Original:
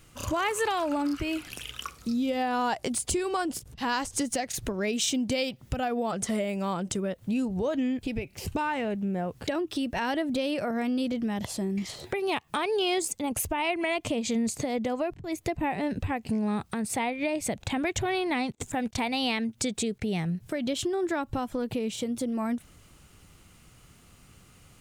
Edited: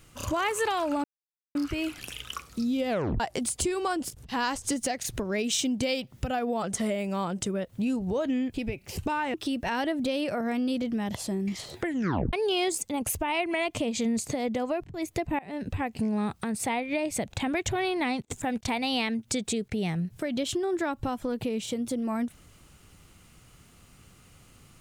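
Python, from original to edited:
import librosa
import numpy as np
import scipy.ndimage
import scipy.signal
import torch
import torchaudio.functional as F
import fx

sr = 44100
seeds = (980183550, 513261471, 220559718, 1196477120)

y = fx.edit(x, sr, fx.insert_silence(at_s=1.04, length_s=0.51),
    fx.tape_stop(start_s=2.38, length_s=0.31),
    fx.cut(start_s=8.83, length_s=0.81),
    fx.tape_stop(start_s=12.09, length_s=0.54),
    fx.fade_in_from(start_s=15.69, length_s=0.5, curve='qsin', floor_db=-23.5), tone=tone)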